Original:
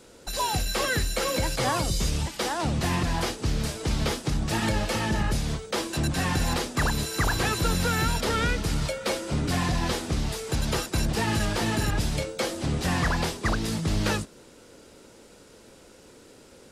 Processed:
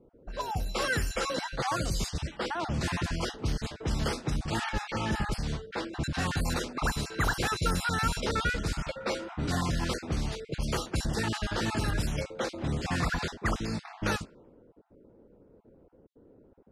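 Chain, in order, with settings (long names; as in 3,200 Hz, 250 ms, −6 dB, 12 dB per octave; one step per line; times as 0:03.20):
time-frequency cells dropped at random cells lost 23%
low-pass that shuts in the quiet parts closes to 460 Hz, open at −21.5 dBFS
dynamic equaliser 1,400 Hz, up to +6 dB, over −47 dBFS, Q 5.5
gain on a spectral selection 0:00.41–0:00.75, 940–10,000 Hz −10 dB
level −3.5 dB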